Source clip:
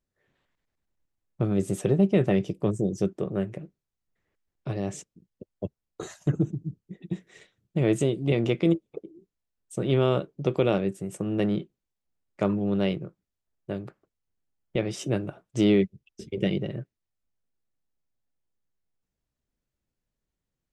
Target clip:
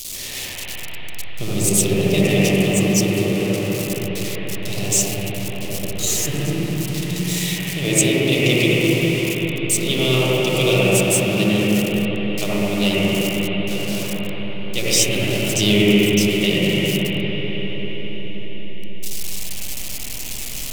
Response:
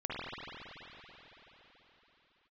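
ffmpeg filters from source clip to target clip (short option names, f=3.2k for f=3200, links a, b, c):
-filter_complex "[0:a]aeval=exprs='val(0)+0.5*0.0158*sgn(val(0))':c=same[a];[1:a]atrim=start_sample=2205,asetrate=30870,aresample=44100[b];[a][b]afir=irnorm=-1:irlink=0,aexciter=amount=14.1:drive=3.3:freq=2.4k,volume=-2.5dB"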